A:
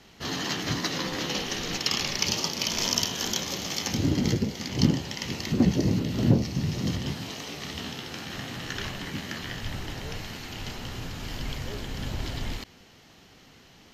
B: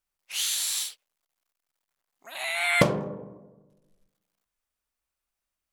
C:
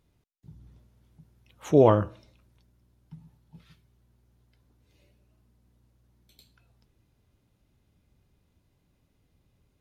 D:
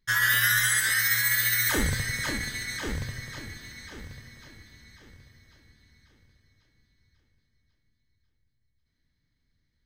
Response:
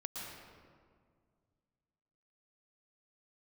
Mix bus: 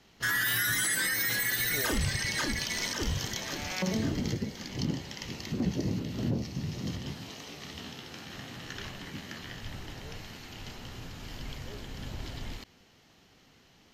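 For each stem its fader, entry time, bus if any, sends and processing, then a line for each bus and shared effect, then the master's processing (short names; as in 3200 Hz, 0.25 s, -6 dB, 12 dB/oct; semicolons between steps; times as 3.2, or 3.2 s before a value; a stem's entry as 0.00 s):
-7.0 dB, 0.00 s, no send, dry
-8.0 dB, 1.00 s, no send, arpeggiated vocoder major triad, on D3, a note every 0.208 s
-18.5 dB, 0.00 s, no send, dry
+2.0 dB, 0.15 s, no send, reverb removal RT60 1.5 s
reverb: off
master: limiter -20 dBFS, peak gain reduction 8.5 dB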